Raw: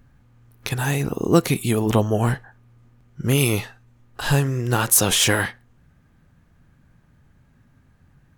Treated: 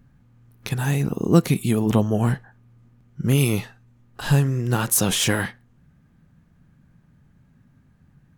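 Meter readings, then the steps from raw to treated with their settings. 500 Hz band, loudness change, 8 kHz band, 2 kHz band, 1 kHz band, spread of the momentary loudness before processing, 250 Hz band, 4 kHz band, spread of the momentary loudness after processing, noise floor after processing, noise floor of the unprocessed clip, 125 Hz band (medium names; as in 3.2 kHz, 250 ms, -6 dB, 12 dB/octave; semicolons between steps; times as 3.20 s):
-2.5 dB, -1.0 dB, -4.0 dB, -4.0 dB, -3.5 dB, 13 LU, +1.0 dB, -4.0 dB, 12 LU, -58 dBFS, -58 dBFS, +1.0 dB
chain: peaking EQ 180 Hz +8 dB 1.2 oct; trim -4 dB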